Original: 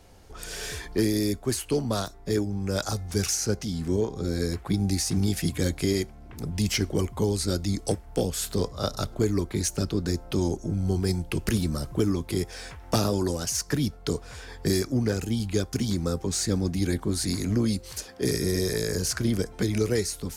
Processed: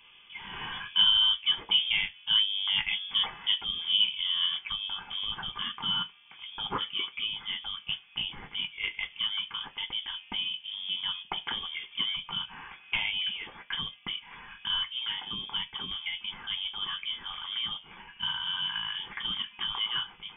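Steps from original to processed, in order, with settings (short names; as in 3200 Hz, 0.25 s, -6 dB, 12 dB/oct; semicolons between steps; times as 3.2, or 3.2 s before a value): HPF 340 Hz 6 dB/oct, from 4.58 s 1100 Hz; reverb, pre-delay 3 ms, DRR 4 dB; inverted band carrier 3400 Hz; gain -3 dB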